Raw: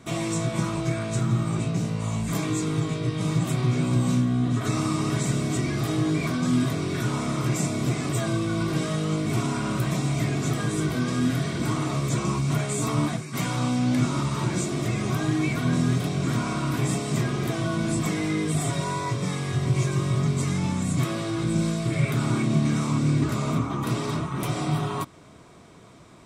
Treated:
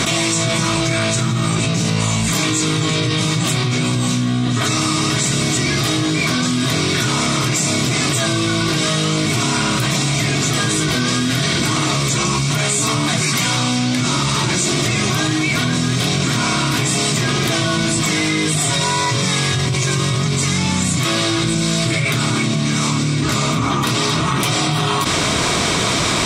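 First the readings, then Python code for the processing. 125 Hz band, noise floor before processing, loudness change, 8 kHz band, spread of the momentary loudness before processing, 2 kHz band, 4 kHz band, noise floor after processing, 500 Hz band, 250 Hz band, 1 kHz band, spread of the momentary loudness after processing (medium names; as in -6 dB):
+5.0 dB, -37 dBFS, +9.0 dB, +16.0 dB, 4 LU, +14.5 dB, +18.5 dB, -18 dBFS, +7.5 dB, +6.0 dB, +10.5 dB, 1 LU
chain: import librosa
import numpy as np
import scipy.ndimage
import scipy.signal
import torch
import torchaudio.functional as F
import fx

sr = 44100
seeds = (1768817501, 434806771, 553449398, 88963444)

y = fx.peak_eq(x, sr, hz=4500.0, db=13.0, octaves=2.9)
y = fx.env_flatten(y, sr, amount_pct=100)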